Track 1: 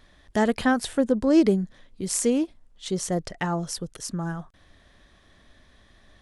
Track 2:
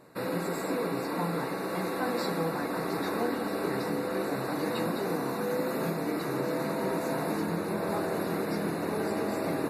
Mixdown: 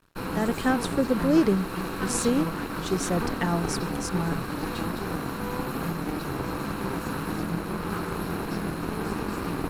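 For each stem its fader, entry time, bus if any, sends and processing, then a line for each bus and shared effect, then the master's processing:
−9.5 dB, 0.00 s, no send, automatic gain control gain up to 9 dB
+1.5 dB, 0.00 s, no send, lower of the sound and its delayed copy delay 0.72 ms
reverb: not used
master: dead-zone distortion −52.5 dBFS; low-shelf EQ 130 Hz +6 dB

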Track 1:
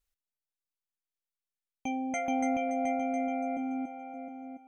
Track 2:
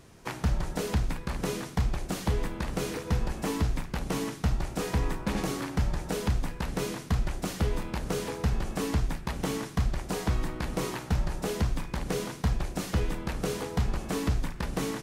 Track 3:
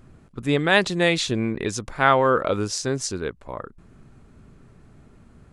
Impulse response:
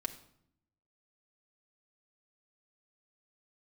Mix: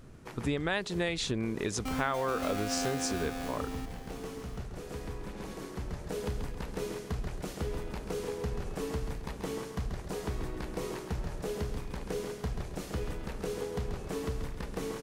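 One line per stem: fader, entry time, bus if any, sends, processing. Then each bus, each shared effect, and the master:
0:01.75 −13 dB → 0:02.00 −3 dB → 0:02.92 −3 dB → 0:03.69 −12.5 dB, 0.00 s, no send, no echo send, each half-wave held at its own peak
−8.0 dB, 0.00 s, no send, echo send −6.5 dB, parametric band 440 Hz +6.5 dB 0.6 octaves; automatic ducking −8 dB, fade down 0.70 s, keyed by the third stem
−2.5 dB, 0.00 s, no send, no echo send, no processing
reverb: not used
echo: repeating echo 135 ms, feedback 36%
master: downward compressor 6 to 1, threshold −28 dBFS, peak gain reduction 13.5 dB

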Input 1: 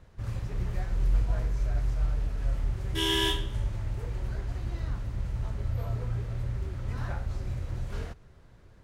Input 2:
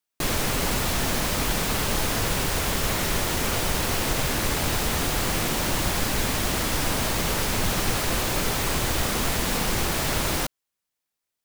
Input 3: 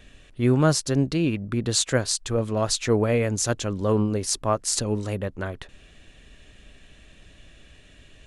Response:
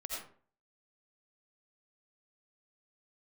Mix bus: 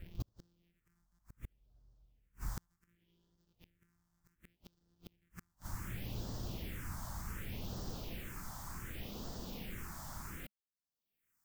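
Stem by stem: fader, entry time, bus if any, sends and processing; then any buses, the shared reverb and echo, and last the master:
+1.5 dB, 0.00 s, no send, automatic ducking −17 dB, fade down 0.65 s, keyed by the third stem
−19.5 dB, 0.00 s, no send, upward compression, threshold −36 dBFS
−7.0 dB, 0.00 s, muted 0:01.19–0:02.57, no send, samples sorted by size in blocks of 256 samples; drawn EQ curve 410 Hz 0 dB, 630 Hz −16 dB, 1,700 Hz +4 dB; downward compressor 8 to 1, threshold −25 dBFS, peak gain reduction 11.5 dB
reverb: not used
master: thirty-one-band graphic EQ 200 Hz +4 dB, 4,000 Hz −4 dB, 10,000 Hz −8 dB; all-pass phaser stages 4, 0.67 Hz, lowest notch 420–2,300 Hz; gate with flip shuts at −28 dBFS, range −41 dB

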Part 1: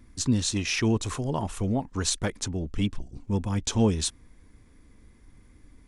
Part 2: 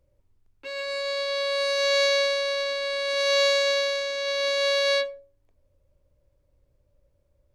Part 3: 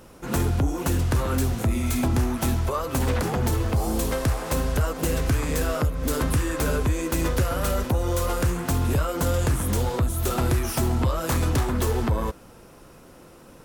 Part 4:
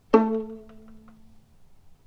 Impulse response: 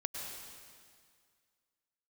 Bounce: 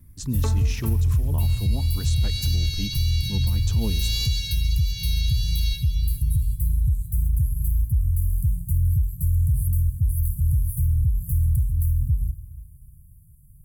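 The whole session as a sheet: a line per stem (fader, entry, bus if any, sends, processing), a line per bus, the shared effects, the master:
−11.0 dB, 0.00 s, send −13.5 dB, echo send −21 dB, no processing
−5.5 dB, 0.75 s, send −3.5 dB, echo send −10.5 dB, Butterworth high-pass 2,700 Hz 36 dB per octave; rotating-speaker cabinet horn 1.1 Hz; gain into a clipping stage and back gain 24 dB
−4.0 dB, 0.00 s, send −11.5 dB, no echo send, inverse Chebyshev band-stop filter 320–5,100 Hz, stop band 50 dB
−10.0 dB, 0.30 s, no send, echo send −10.5 dB, spectral tilt +4 dB per octave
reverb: on, RT60 2.0 s, pre-delay 93 ms
echo: single-tap delay 400 ms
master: pitch vibrato 1.7 Hz 22 cents; bass and treble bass +8 dB, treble +3 dB; brickwall limiter −14 dBFS, peak gain reduction 6.5 dB

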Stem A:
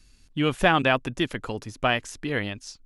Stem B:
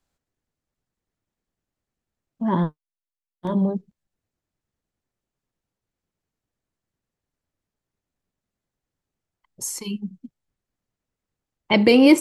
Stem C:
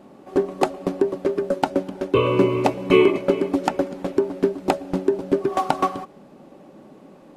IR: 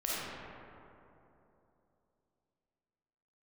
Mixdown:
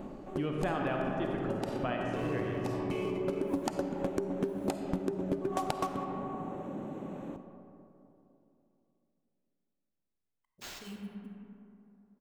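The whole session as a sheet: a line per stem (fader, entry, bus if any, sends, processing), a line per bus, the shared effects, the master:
−4.0 dB, 0.00 s, send −3 dB, low-pass filter 1,000 Hz 6 dB per octave
−19.5 dB, 1.00 s, send −4 dB, sample-rate reduction 11,000 Hz, jitter 20%
+2.0 dB, 0.00 s, send −13.5 dB, adaptive Wiener filter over 9 samples; bass and treble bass +5 dB, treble +11 dB; downward compressor, threshold −20 dBFS, peak gain reduction 11 dB; automatic ducking −15 dB, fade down 0.35 s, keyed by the first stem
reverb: on, RT60 3.0 s, pre-delay 10 ms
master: downward compressor 2.5 to 1, threshold −35 dBFS, peak gain reduction 14 dB

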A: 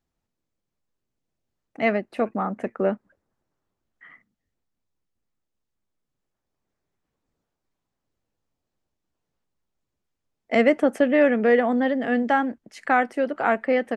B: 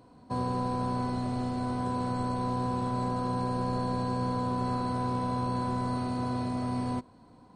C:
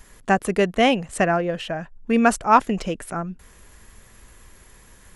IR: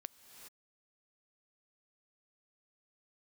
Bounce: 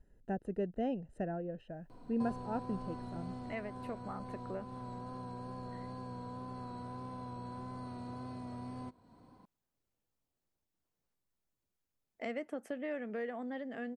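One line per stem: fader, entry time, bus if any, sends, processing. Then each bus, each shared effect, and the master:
−7.5 dB, 1.70 s, bus A, no send, no processing
−5.5 dB, 1.90 s, bus A, no send, high-shelf EQ 6,600 Hz −10.5 dB; speech leveller 0.5 s
−14.0 dB, 0.00 s, no bus, no send, moving average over 39 samples
bus A: 0.0 dB, tape wow and flutter 29 cents; downward compressor 2 to 1, threshold −48 dBFS, peak gain reduction 15 dB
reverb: not used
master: high-shelf EQ 9,900 Hz +10.5 dB

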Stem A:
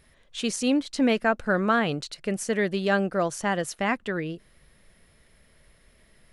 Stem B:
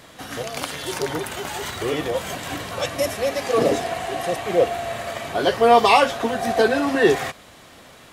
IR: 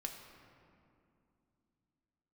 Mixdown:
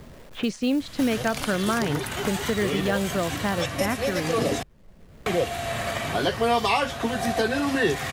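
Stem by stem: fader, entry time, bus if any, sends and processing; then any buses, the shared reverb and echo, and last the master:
−4.0 dB, 0.00 s, no send, low-pass that shuts in the quiet parts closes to 740 Hz, open at −19.5 dBFS; log-companded quantiser 6 bits
−1.5 dB, 0.80 s, muted 0:04.63–0:05.26, no send, parametric band 490 Hz −7 dB 2.5 octaves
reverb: not used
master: low-shelf EQ 280 Hz +6 dB; multiband upward and downward compressor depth 70%

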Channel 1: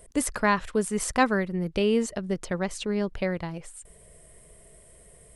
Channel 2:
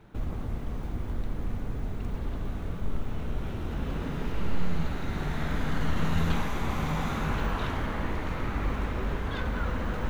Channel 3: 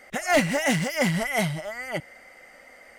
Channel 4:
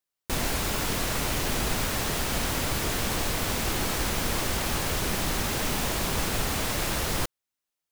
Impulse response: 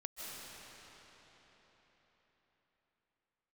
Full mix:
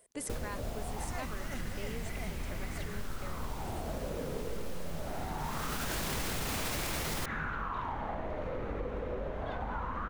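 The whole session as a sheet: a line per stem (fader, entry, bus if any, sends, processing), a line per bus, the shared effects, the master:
−9.5 dB, 0.00 s, bus A, no send, high-pass filter 500 Hz 6 dB per octave
0.0 dB, 0.15 s, bus A, no send, high-shelf EQ 5,300 Hz −11 dB; auto-filter bell 0.23 Hz 490–2,400 Hz +16 dB
−14.0 dB, 0.85 s, bus A, no send, no processing
+0.5 dB, 0.00 s, no bus, no send, automatic ducking −21 dB, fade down 0.40 s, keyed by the first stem
bus A: 0.0 dB, downward compressor 6 to 1, threshold −34 dBFS, peak gain reduction 15.5 dB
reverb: not used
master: brickwall limiter −25.5 dBFS, peak gain reduction 12 dB

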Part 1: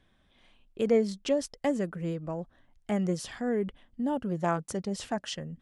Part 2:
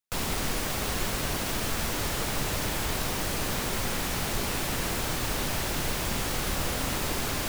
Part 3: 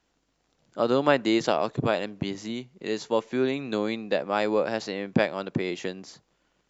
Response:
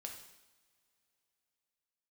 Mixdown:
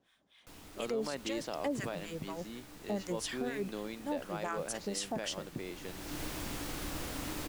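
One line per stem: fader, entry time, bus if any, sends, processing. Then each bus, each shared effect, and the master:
+2.0 dB, 0.00 s, no send, high-pass filter 160 Hz; spectral tilt +2 dB per octave; two-band tremolo in antiphase 4.1 Hz, depth 100%, crossover 890 Hz
−12.0 dB, 0.35 s, send −12.5 dB, parametric band 300 Hz +13 dB 0.21 octaves; automatic ducking −19 dB, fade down 0.55 s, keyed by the first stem
−13.5 dB, 0.00 s, no send, no processing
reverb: on, pre-delay 3 ms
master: brickwall limiter −26 dBFS, peak gain reduction 10.5 dB

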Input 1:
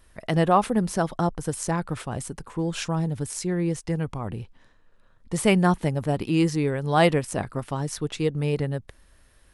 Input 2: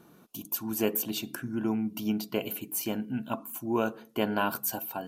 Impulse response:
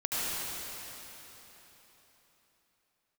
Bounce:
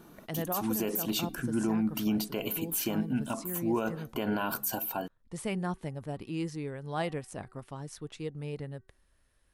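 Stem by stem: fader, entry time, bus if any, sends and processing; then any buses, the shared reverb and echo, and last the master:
−13.0 dB, 0.00 s, no send, hum removal 379.3 Hz, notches 5
+3.0 dB, 0.00 s, no send, no processing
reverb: not used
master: brickwall limiter −21 dBFS, peak gain reduction 10.5 dB

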